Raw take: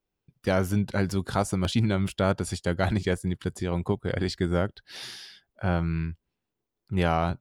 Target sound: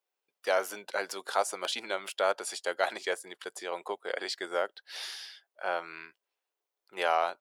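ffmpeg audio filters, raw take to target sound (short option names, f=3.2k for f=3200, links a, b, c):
-af "highpass=f=500:w=0.5412,highpass=f=500:w=1.3066"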